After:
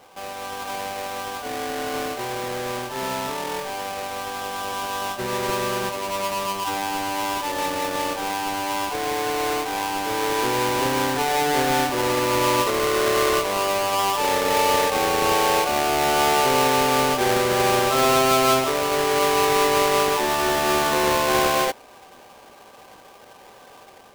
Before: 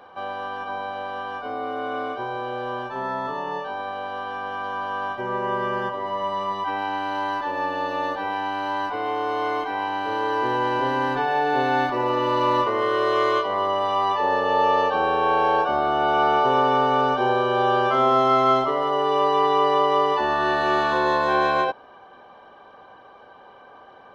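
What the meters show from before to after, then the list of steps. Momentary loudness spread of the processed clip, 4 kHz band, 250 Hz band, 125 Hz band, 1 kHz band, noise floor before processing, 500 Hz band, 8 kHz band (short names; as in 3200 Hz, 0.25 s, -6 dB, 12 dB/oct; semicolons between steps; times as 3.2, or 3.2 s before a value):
11 LU, +7.5 dB, +2.0 dB, +3.0 dB, -1.5 dB, -48 dBFS, +1.0 dB, n/a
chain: half-waves squared off; AGC gain up to 4 dB; gain -7 dB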